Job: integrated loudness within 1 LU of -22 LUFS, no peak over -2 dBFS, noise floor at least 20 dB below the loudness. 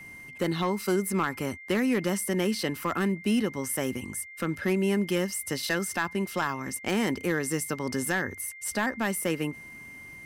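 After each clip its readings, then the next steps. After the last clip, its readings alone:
clipped 0.4%; flat tops at -18.5 dBFS; steady tone 2100 Hz; tone level -43 dBFS; loudness -29.0 LUFS; peak -18.5 dBFS; loudness target -22.0 LUFS
-> clip repair -18.5 dBFS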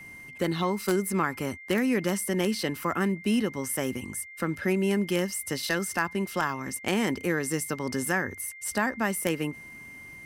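clipped 0.0%; steady tone 2100 Hz; tone level -43 dBFS
-> notch 2100 Hz, Q 30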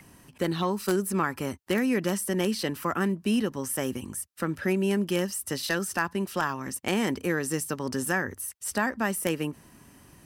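steady tone none; loudness -28.5 LUFS; peak -9.5 dBFS; loudness target -22.0 LUFS
-> gain +6.5 dB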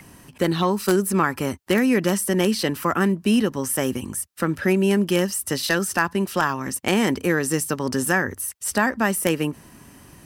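loudness -22.0 LUFS; peak -3.0 dBFS; noise floor -49 dBFS

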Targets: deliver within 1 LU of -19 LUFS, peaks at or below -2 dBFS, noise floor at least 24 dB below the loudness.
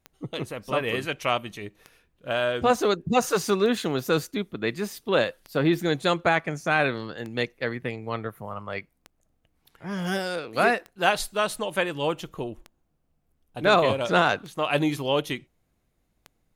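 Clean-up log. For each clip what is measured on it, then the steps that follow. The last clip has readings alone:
clicks 10; loudness -26.0 LUFS; peak -5.5 dBFS; loudness target -19.0 LUFS
-> de-click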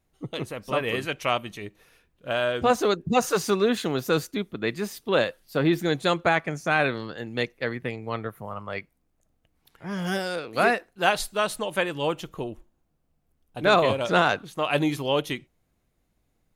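clicks 0; loudness -25.5 LUFS; peak -5.5 dBFS; loudness target -19.0 LUFS
-> gain +6.5 dB; limiter -2 dBFS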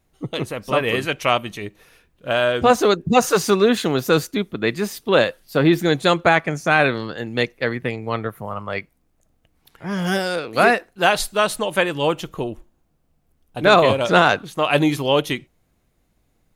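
loudness -19.5 LUFS; peak -2.0 dBFS; noise floor -66 dBFS

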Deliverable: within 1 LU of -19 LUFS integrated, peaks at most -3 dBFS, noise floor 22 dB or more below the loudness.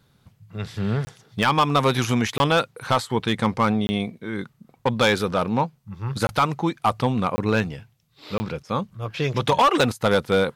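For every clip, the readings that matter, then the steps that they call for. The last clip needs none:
clipped 0.9%; flat tops at -12.0 dBFS; dropouts 6; longest dropout 20 ms; loudness -23.0 LUFS; peak -12.0 dBFS; loudness target -19.0 LUFS
-> clip repair -12 dBFS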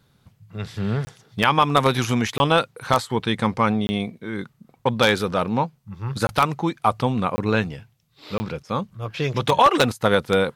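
clipped 0.0%; dropouts 6; longest dropout 20 ms
-> interpolate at 1.05/2.38/3.87/6.27/7.36/8.38, 20 ms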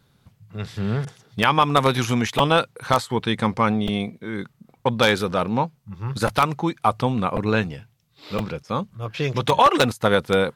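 dropouts 0; loudness -22.0 LUFS; peak -3.0 dBFS; loudness target -19.0 LUFS
-> gain +3 dB; limiter -3 dBFS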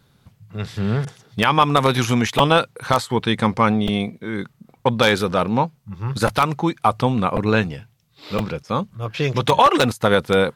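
loudness -19.5 LUFS; peak -3.0 dBFS; noise floor -59 dBFS

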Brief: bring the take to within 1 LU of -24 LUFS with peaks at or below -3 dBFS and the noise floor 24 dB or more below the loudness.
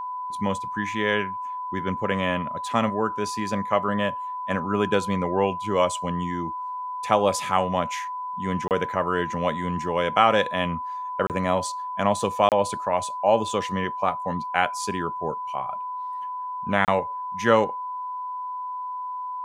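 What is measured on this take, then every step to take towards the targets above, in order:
dropouts 4; longest dropout 28 ms; steady tone 1000 Hz; tone level -29 dBFS; loudness -25.5 LUFS; peak -2.5 dBFS; loudness target -24.0 LUFS
-> interpolate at 8.68/11.27/12.49/16.85, 28 ms; notch 1000 Hz, Q 30; gain +1.5 dB; limiter -3 dBFS

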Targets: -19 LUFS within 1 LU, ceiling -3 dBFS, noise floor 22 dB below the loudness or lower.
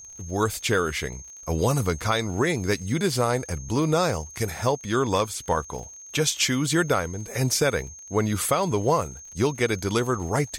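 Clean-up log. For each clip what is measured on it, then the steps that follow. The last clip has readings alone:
ticks 37/s; steady tone 6400 Hz; tone level -41 dBFS; loudness -25.0 LUFS; peak -10.5 dBFS; loudness target -19.0 LUFS
-> de-click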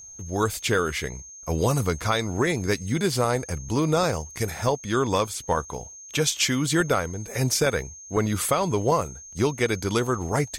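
ticks 0.38/s; steady tone 6400 Hz; tone level -41 dBFS
-> notch 6400 Hz, Q 30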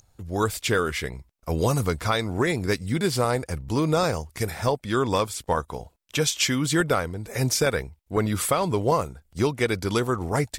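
steady tone none; loudness -25.0 LUFS; peak -10.5 dBFS; loudness target -19.0 LUFS
-> gain +6 dB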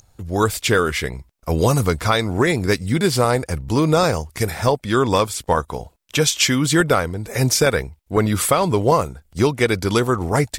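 loudness -19.0 LUFS; peak -4.5 dBFS; noise floor -59 dBFS

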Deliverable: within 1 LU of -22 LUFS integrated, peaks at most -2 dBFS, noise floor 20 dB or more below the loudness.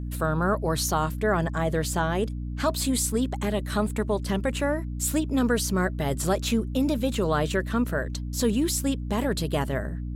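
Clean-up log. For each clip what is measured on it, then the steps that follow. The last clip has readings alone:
hum 60 Hz; harmonics up to 300 Hz; hum level -29 dBFS; loudness -26.0 LUFS; peak -11.5 dBFS; loudness target -22.0 LUFS
-> de-hum 60 Hz, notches 5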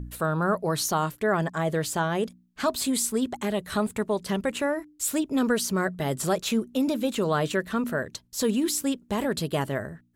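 hum none; loudness -27.0 LUFS; peak -12.5 dBFS; loudness target -22.0 LUFS
-> gain +5 dB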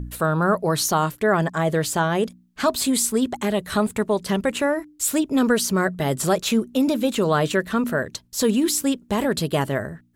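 loudness -22.0 LUFS; peak -7.5 dBFS; noise floor -55 dBFS

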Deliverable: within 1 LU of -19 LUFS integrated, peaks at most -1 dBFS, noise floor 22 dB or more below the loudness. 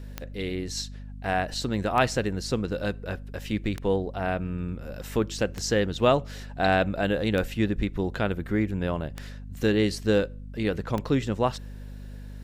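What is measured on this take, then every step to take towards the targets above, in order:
clicks 7; hum 50 Hz; harmonics up to 250 Hz; hum level -37 dBFS; loudness -27.5 LUFS; peak -8.5 dBFS; loudness target -19.0 LUFS
-> de-click; notches 50/100/150/200/250 Hz; gain +8.5 dB; limiter -1 dBFS

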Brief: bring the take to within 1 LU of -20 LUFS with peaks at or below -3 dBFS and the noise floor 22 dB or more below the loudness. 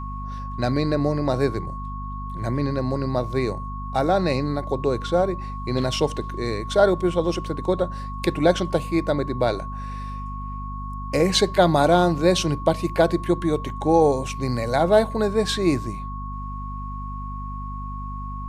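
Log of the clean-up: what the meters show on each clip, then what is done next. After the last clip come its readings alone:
hum 50 Hz; harmonics up to 250 Hz; hum level -30 dBFS; steady tone 1100 Hz; tone level -34 dBFS; loudness -23.5 LUFS; peak -4.0 dBFS; loudness target -20.0 LUFS
-> notches 50/100/150/200/250 Hz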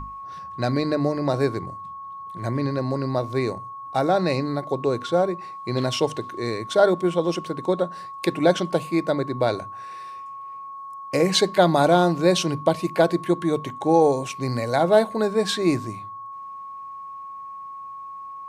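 hum none; steady tone 1100 Hz; tone level -34 dBFS
-> notch 1100 Hz, Q 30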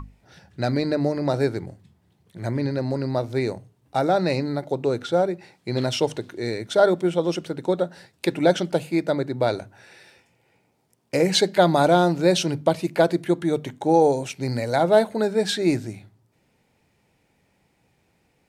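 steady tone none; loudness -22.5 LUFS; peak -4.5 dBFS; loudness target -20.0 LUFS
-> gain +2.5 dB; limiter -3 dBFS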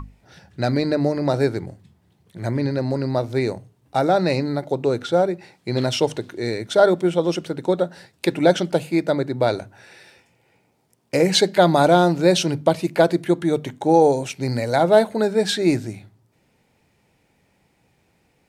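loudness -20.5 LUFS; peak -3.0 dBFS; noise floor -64 dBFS

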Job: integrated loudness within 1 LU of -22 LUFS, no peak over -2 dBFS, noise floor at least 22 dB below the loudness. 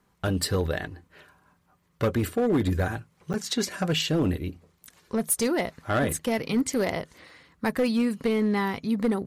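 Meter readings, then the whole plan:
clipped 1.5%; flat tops at -18.0 dBFS; dropouts 1; longest dropout 9.0 ms; loudness -27.0 LUFS; peak -18.0 dBFS; loudness target -22.0 LUFS
-> clip repair -18 dBFS; interpolate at 3.33, 9 ms; gain +5 dB

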